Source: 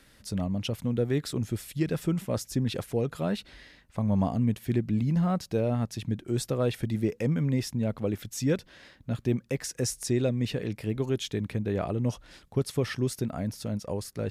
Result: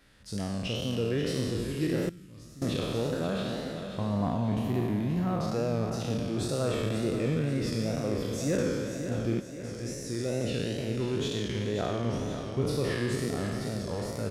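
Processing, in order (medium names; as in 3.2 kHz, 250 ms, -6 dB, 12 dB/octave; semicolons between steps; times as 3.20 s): spectral sustain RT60 2.19 s; hard clipper -15 dBFS, distortion -30 dB; treble shelf 9.3 kHz -10.5 dB; 9.40–10.64 s: fade in; feedback delay 535 ms, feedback 49%, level -9 dB; wow and flutter 87 cents; 2.09–2.62 s: amplifier tone stack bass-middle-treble 6-0-2; trim -5 dB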